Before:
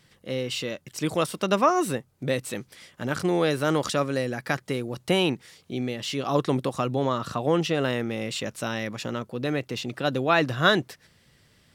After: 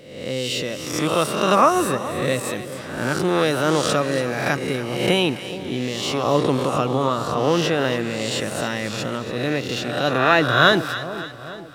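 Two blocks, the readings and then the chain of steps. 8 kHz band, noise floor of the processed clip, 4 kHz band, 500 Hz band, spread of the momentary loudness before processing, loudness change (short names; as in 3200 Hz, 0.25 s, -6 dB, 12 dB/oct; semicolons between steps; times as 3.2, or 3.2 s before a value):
+7.0 dB, -34 dBFS, +6.5 dB, +5.5 dB, 10 LU, +5.5 dB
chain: spectral swells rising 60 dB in 0.87 s; on a send: split-band echo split 1000 Hz, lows 0.422 s, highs 0.284 s, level -12.5 dB; on the sum: gain +2.5 dB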